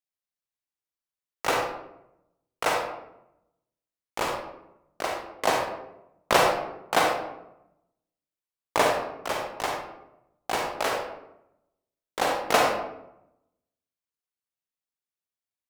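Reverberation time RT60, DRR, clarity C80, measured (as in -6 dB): 0.85 s, 0.0 dB, 5.5 dB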